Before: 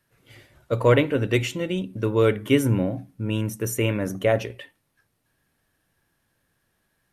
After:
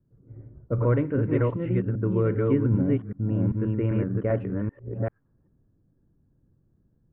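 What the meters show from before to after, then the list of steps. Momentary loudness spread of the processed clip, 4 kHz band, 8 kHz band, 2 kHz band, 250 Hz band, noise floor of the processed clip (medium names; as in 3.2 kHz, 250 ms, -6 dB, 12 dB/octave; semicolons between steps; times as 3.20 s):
9 LU, under -25 dB, under -40 dB, -11.5 dB, 0.0 dB, -68 dBFS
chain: chunks repeated in reverse 391 ms, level -1.5 dB; level-controlled noise filter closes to 450 Hz, open at -14.5 dBFS; low-pass 1.4 kHz 24 dB/octave; peaking EQ 730 Hz -12.5 dB 1.7 oct; compression 1.5:1, threshold -44 dBFS, peak gain reduction 10 dB; trim +9 dB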